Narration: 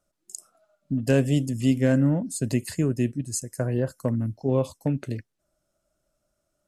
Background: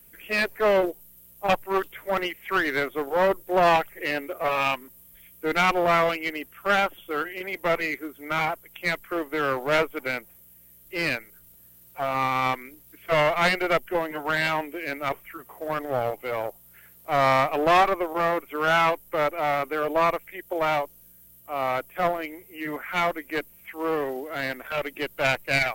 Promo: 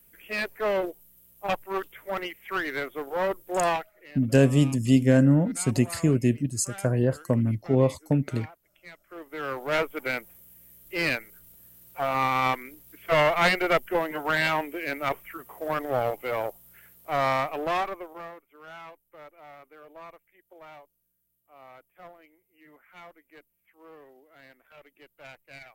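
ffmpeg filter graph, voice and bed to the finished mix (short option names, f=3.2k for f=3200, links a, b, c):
-filter_complex "[0:a]adelay=3250,volume=2dB[a];[1:a]volume=15.5dB,afade=t=out:st=3.69:d=0.23:silence=0.16788,afade=t=in:st=9.03:d=1.16:silence=0.0891251,afade=t=out:st=16.41:d=2:silence=0.0668344[b];[a][b]amix=inputs=2:normalize=0"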